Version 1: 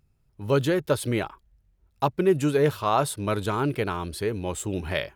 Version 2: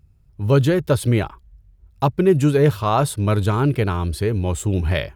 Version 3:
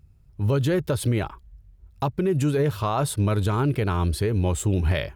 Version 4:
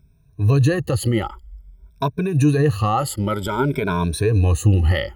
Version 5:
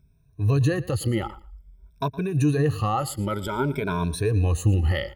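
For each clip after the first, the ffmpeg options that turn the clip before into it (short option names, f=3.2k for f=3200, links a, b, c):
-af "equalizer=f=64:w=0.46:g=12.5,volume=3dB"
-af "alimiter=limit=-14.5dB:level=0:latency=1:release=126"
-af "afftfilt=real='re*pow(10,20/40*sin(2*PI*(1.6*log(max(b,1)*sr/1024/100)/log(2)-(0.52)*(pts-256)/sr)))':imag='im*pow(10,20/40*sin(2*PI*(1.6*log(max(b,1)*sr/1024/100)/log(2)-(0.52)*(pts-256)/sr)))':win_size=1024:overlap=0.75"
-af "aecho=1:1:115|230:0.112|0.0168,volume=-5dB"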